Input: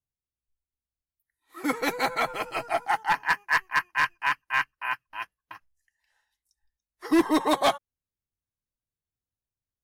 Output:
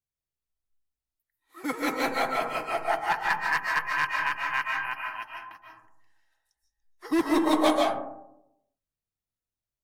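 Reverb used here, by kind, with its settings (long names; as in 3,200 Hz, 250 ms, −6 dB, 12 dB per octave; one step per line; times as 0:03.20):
comb and all-pass reverb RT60 0.85 s, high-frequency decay 0.3×, pre-delay 105 ms, DRR −1 dB
level −4 dB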